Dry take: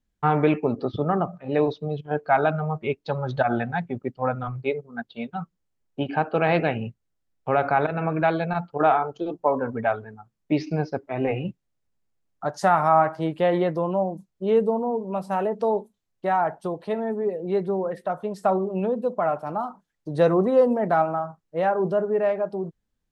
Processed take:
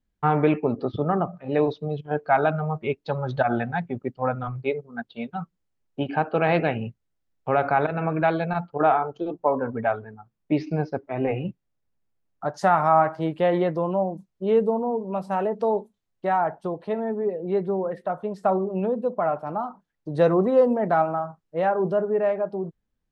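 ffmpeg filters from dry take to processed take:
-af "asetnsamples=n=441:p=0,asendcmd='1.38 lowpass f 5700;8.64 lowpass f 2700;12.55 lowpass f 5000;16.38 lowpass f 2600;20.13 lowpass f 5000;22.01 lowpass f 2900',lowpass=f=3600:p=1"

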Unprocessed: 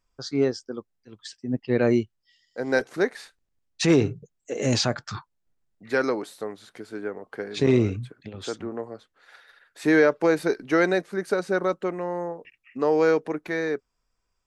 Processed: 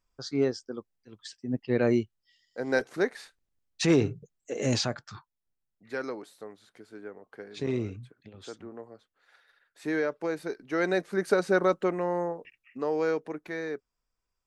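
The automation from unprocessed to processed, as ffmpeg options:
-af "volume=2.37,afade=t=out:st=4.7:d=0.4:silence=0.446684,afade=t=in:st=10.7:d=0.51:silence=0.281838,afade=t=out:st=12.2:d=0.65:silence=0.398107"

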